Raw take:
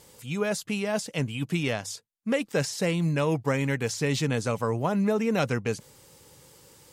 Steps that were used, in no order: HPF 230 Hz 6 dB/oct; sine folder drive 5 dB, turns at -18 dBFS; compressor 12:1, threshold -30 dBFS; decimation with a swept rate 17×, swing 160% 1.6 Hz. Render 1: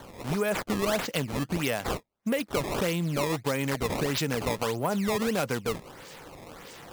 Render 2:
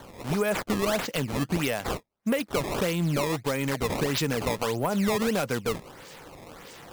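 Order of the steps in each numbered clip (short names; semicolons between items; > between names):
compressor > sine folder > HPF > decimation with a swept rate; HPF > compressor > sine folder > decimation with a swept rate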